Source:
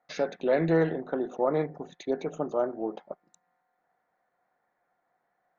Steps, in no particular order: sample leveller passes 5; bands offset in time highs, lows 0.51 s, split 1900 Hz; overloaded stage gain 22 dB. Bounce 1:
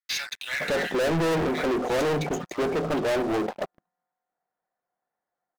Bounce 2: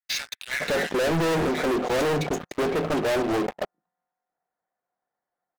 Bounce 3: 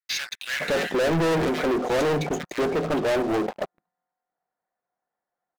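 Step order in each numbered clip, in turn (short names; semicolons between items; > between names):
bands offset in time > overloaded stage > sample leveller; bands offset in time > sample leveller > overloaded stage; overloaded stage > bands offset in time > sample leveller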